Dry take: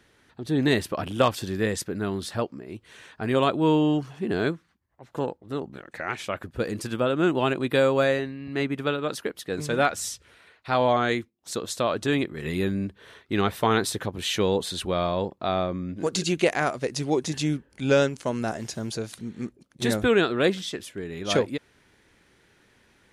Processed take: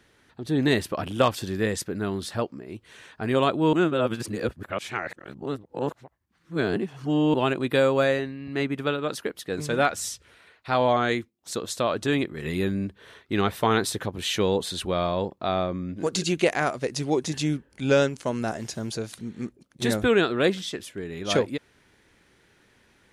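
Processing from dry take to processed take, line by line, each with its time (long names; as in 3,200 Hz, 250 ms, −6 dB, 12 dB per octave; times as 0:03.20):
0:03.73–0:07.34: reverse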